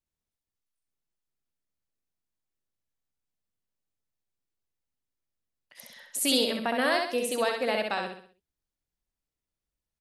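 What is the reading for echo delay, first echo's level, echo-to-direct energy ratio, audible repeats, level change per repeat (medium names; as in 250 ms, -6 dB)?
65 ms, -4.0 dB, -3.0 dB, 5, -7.5 dB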